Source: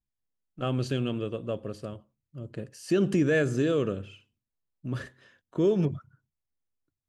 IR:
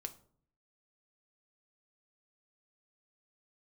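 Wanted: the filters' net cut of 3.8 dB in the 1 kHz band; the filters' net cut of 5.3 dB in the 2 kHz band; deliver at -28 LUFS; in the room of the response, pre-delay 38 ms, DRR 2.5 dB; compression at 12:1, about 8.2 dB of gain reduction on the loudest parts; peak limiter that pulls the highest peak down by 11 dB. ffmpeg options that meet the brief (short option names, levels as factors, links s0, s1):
-filter_complex "[0:a]equalizer=f=1000:t=o:g=-3.5,equalizer=f=2000:t=o:g=-5.5,acompressor=threshold=0.0398:ratio=12,alimiter=level_in=2.24:limit=0.0631:level=0:latency=1,volume=0.447,asplit=2[s0][s1];[1:a]atrim=start_sample=2205,adelay=38[s2];[s1][s2]afir=irnorm=-1:irlink=0,volume=1.06[s3];[s0][s3]amix=inputs=2:normalize=0,volume=3.55"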